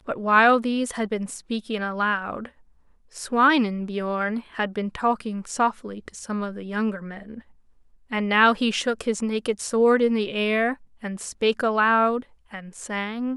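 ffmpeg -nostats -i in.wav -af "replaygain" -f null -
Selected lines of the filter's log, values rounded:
track_gain = +3.0 dB
track_peak = 0.473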